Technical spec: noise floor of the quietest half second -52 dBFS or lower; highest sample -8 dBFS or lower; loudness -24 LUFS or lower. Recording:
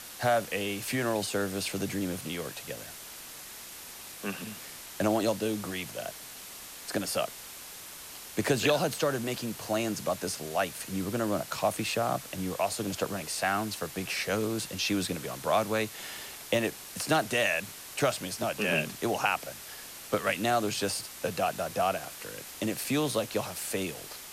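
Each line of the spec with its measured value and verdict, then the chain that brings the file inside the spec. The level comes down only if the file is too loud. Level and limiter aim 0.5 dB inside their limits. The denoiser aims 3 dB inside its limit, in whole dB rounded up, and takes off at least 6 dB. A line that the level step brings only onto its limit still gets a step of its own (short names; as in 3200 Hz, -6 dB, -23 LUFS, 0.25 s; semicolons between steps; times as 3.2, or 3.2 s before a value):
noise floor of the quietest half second -45 dBFS: fail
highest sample -12.5 dBFS: OK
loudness -31.0 LUFS: OK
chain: denoiser 10 dB, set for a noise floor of -45 dBFS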